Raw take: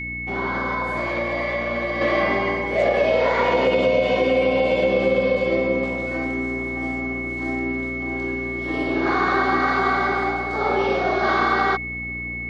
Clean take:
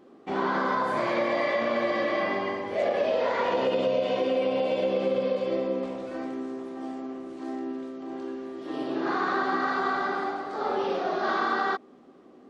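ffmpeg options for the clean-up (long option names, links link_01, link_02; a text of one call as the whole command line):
ffmpeg -i in.wav -af "bandreject=frequency=59.5:width_type=h:width=4,bandreject=frequency=119:width_type=h:width=4,bandreject=frequency=178.5:width_type=h:width=4,bandreject=frequency=238:width_type=h:width=4,bandreject=frequency=297.5:width_type=h:width=4,bandreject=frequency=2200:width=30,asetnsamples=nb_out_samples=441:pad=0,asendcmd='2.01 volume volume -6.5dB',volume=0dB" out.wav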